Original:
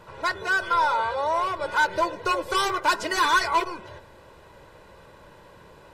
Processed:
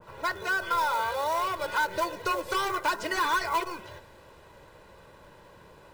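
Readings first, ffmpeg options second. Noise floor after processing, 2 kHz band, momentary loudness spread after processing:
-54 dBFS, -5.0 dB, 6 LU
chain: -filter_complex "[0:a]acrossover=split=980|2100[s0][s1][s2];[s0]acompressor=threshold=0.0562:ratio=4[s3];[s1]acompressor=threshold=0.0398:ratio=4[s4];[s2]acompressor=threshold=0.00891:ratio=4[s5];[s3][s4][s5]amix=inputs=3:normalize=0,acrossover=split=1700[s6][s7];[s6]acrusher=bits=5:mode=log:mix=0:aa=0.000001[s8];[s8][s7]amix=inputs=2:normalize=0,adynamicequalizer=threshold=0.0141:dfrequency=1700:dqfactor=0.7:tfrequency=1700:tqfactor=0.7:attack=5:release=100:ratio=0.375:range=2.5:mode=boostabove:tftype=highshelf,volume=0.708"

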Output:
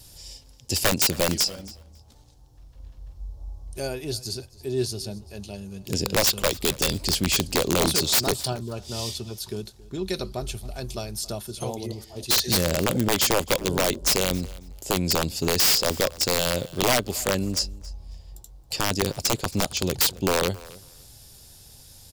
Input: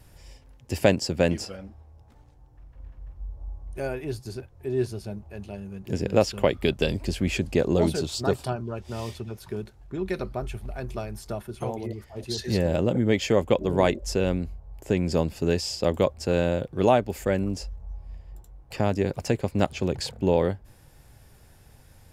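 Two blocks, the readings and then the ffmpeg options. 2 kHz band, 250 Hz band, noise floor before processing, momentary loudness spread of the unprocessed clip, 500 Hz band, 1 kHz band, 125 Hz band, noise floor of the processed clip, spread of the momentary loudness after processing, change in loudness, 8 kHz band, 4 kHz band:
+5.0 dB, -2.0 dB, -54 dBFS, 16 LU, -3.0 dB, +1.5 dB, -2.0 dB, -51 dBFS, 17 LU, +2.5 dB, +14.5 dB, +11.0 dB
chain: -af "highshelf=f=2900:t=q:w=1.5:g=12.5,aeval=exprs='(mod(4.47*val(0)+1,2)-1)/4.47':c=same,aecho=1:1:273|546:0.0891|0.0143"

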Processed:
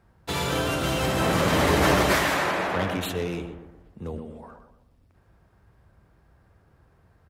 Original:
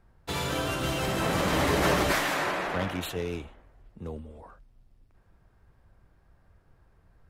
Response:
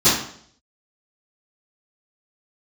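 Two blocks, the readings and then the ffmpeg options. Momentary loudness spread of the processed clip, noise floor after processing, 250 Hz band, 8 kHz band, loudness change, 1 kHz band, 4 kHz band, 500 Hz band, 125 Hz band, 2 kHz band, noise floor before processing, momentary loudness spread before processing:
17 LU, -62 dBFS, +4.5 dB, +3.5 dB, +4.0 dB, +4.0 dB, +3.5 dB, +4.5 dB, +4.5 dB, +4.0 dB, -63 dBFS, 17 LU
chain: -filter_complex "[0:a]highpass=55,asplit=2[s0][s1];[s1]adelay=121,lowpass=f=1100:p=1,volume=0.531,asplit=2[s2][s3];[s3]adelay=121,lowpass=f=1100:p=1,volume=0.46,asplit=2[s4][s5];[s5]adelay=121,lowpass=f=1100:p=1,volume=0.46,asplit=2[s6][s7];[s7]adelay=121,lowpass=f=1100:p=1,volume=0.46,asplit=2[s8][s9];[s9]adelay=121,lowpass=f=1100:p=1,volume=0.46,asplit=2[s10][s11];[s11]adelay=121,lowpass=f=1100:p=1,volume=0.46[s12];[s2][s4][s6][s8][s10][s12]amix=inputs=6:normalize=0[s13];[s0][s13]amix=inputs=2:normalize=0,volume=1.5"

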